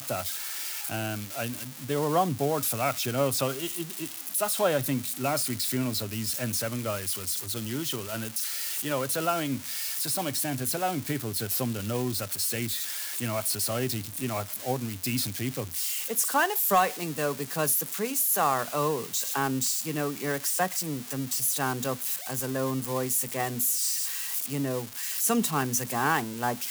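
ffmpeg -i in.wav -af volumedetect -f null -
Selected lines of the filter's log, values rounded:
mean_volume: -29.2 dB
max_volume: -12.5 dB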